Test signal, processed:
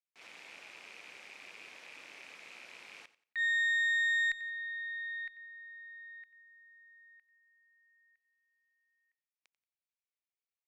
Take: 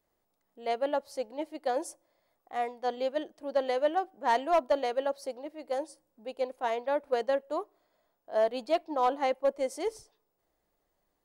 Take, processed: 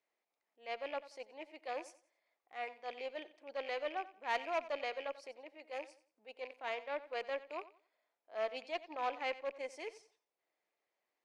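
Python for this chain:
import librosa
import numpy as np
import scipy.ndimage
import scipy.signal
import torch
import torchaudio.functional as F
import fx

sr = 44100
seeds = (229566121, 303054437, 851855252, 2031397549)

y = fx.rattle_buzz(x, sr, strikes_db=-49.0, level_db=-36.0)
y = fx.bandpass_edges(y, sr, low_hz=160.0, high_hz=5600.0)
y = fx.peak_eq(y, sr, hz=2300.0, db=11.5, octaves=0.61)
y = fx.transient(y, sr, attack_db=-7, sustain_db=-2)
y = fx.cheby_harmonics(y, sr, harmonics=(2, 3, 6), levels_db=(-16, -42, -31), full_scale_db=-13.5)
y = fx.bass_treble(y, sr, bass_db=-15, treble_db=3)
y = fx.echo_feedback(y, sr, ms=90, feedback_pct=27, wet_db=-16.5)
y = y * 10.0 ** (-8.5 / 20.0)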